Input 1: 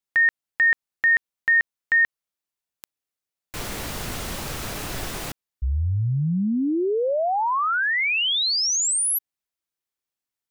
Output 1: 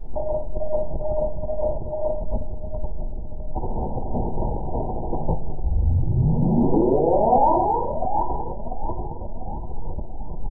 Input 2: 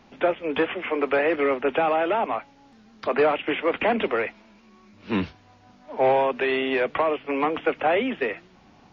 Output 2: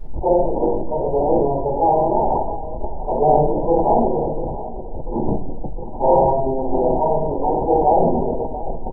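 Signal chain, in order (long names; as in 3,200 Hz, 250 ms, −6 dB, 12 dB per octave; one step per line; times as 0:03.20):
sub-harmonics by changed cycles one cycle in 3, muted
tilt shelving filter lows −4 dB, about 770 Hz
power curve on the samples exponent 1.4
hum removal 194.8 Hz, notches 4
square-wave tremolo 5 Hz, depth 60%, duty 90%
background noise brown −48 dBFS
linear-phase brick-wall low-pass 1,000 Hz
repeating echo 694 ms, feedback 54%, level −16 dB
rectangular room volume 120 cubic metres, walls mixed, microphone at 3.2 metres
level that may fall only so fast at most 27 dB per second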